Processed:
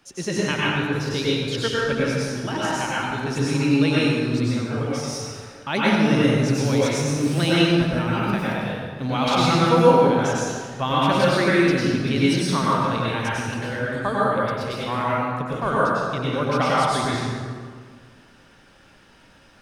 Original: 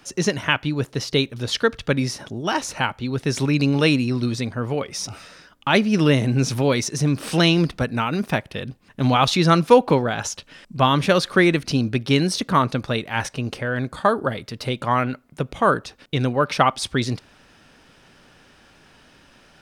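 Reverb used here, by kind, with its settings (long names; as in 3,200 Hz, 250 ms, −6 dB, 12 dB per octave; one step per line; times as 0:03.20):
dense smooth reverb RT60 1.8 s, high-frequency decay 0.6×, pre-delay 85 ms, DRR −7.5 dB
level −8.5 dB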